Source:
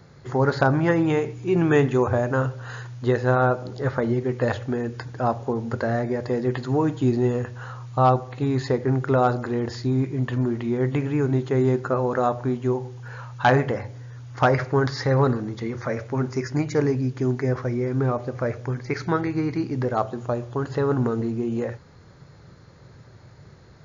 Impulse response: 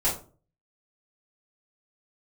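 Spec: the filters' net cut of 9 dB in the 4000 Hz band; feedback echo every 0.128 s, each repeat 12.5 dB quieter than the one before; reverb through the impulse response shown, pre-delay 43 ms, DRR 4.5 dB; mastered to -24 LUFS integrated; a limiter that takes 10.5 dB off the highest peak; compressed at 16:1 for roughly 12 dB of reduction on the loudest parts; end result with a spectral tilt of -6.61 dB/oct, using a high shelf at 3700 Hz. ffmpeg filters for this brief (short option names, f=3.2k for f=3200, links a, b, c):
-filter_complex "[0:a]highshelf=f=3.7k:g=-7,equalizer=f=4k:t=o:g=-7,acompressor=threshold=-26dB:ratio=16,alimiter=limit=-24dB:level=0:latency=1,aecho=1:1:128|256|384:0.237|0.0569|0.0137,asplit=2[a][b];[1:a]atrim=start_sample=2205,adelay=43[c];[b][c]afir=irnorm=-1:irlink=0,volume=-15dB[d];[a][d]amix=inputs=2:normalize=0,volume=7dB"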